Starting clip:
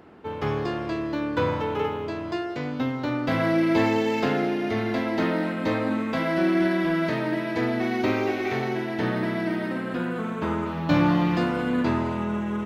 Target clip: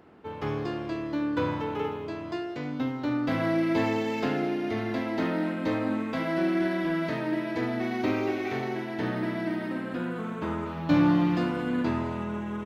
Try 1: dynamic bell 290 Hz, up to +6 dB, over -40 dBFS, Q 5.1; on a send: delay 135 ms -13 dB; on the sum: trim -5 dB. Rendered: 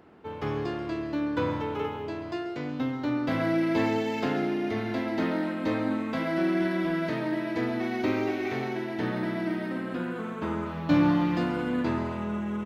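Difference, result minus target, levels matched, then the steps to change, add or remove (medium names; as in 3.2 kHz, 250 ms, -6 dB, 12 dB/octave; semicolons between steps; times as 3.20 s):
echo 61 ms late
change: delay 74 ms -13 dB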